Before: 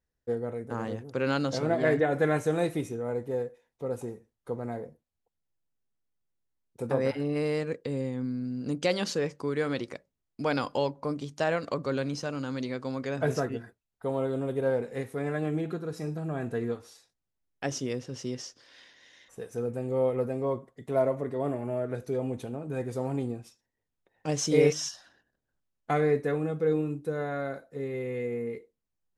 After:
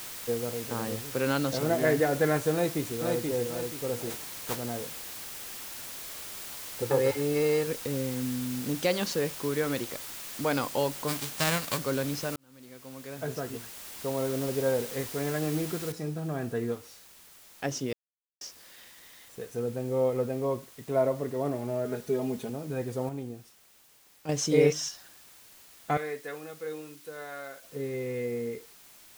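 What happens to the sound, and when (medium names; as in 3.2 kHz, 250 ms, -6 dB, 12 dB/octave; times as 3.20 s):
0.76 s: noise floor step -53 dB -68 dB
2.53–3.24 s: echo throw 480 ms, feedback 35%, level -3.5 dB
4.09–4.55 s: spectral contrast reduction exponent 0.36
6.82–7.67 s: comb 2.3 ms, depth 72%
11.07–11.77 s: formants flattened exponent 0.3
12.36–14.43 s: fade in
15.92 s: noise floor step -41 dB -54 dB
17.93–18.41 s: mute
21.85–22.50 s: comb 4.8 ms, depth 70%
23.09–24.29 s: gain -6 dB
25.97–27.64 s: high-pass 1.5 kHz 6 dB/octave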